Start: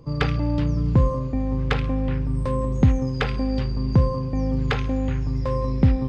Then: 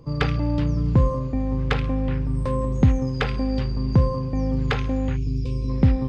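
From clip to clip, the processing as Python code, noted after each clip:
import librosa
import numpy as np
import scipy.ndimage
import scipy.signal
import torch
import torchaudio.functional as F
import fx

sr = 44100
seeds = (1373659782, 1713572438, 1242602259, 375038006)

y = fx.spec_box(x, sr, start_s=5.16, length_s=0.53, low_hz=510.0, high_hz=2200.0, gain_db=-21)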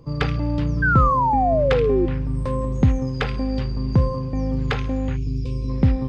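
y = fx.spec_paint(x, sr, seeds[0], shape='fall', start_s=0.82, length_s=1.24, low_hz=340.0, high_hz=1600.0, level_db=-19.0)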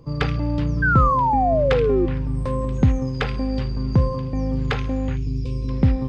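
y = fx.echo_wet_highpass(x, sr, ms=979, feedback_pct=48, hz=2300.0, wet_db=-21.0)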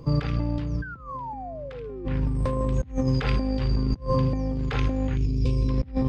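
y = fx.over_compress(x, sr, threshold_db=-25.0, ratio=-0.5)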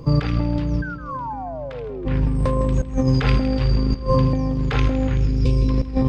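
y = fx.echo_feedback(x, sr, ms=160, feedback_pct=58, wet_db=-14)
y = y * librosa.db_to_amplitude(5.5)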